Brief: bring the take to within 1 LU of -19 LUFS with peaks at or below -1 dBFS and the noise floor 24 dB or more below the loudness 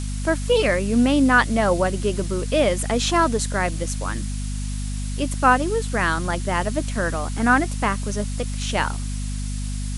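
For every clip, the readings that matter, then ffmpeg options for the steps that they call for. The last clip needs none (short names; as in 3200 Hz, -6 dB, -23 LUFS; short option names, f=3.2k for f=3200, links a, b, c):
hum 50 Hz; harmonics up to 250 Hz; hum level -24 dBFS; noise floor -27 dBFS; noise floor target -46 dBFS; loudness -22.0 LUFS; peak -4.0 dBFS; loudness target -19.0 LUFS
-> -af "bandreject=f=50:t=h:w=4,bandreject=f=100:t=h:w=4,bandreject=f=150:t=h:w=4,bandreject=f=200:t=h:w=4,bandreject=f=250:t=h:w=4"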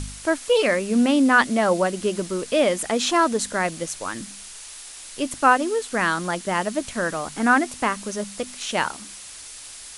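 hum none; noise floor -40 dBFS; noise floor target -46 dBFS
-> -af "afftdn=nr=6:nf=-40"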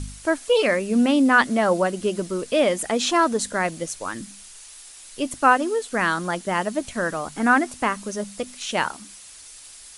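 noise floor -44 dBFS; noise floor target -46 dBFS
-> -af "afftdn=nr=6:nf=-44"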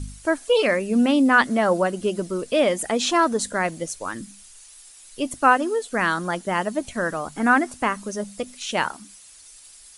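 noise floor -47 dBFS; loudness -22.0 LUFS; peak -4.5 dBFS; loudness target -19.0 LUFS
-> -af "volume=3dB"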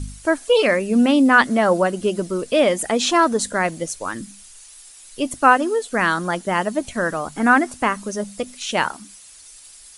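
loudness -19.0 LUFS; peak -1.5 dBFS; noise floor -44 dBFS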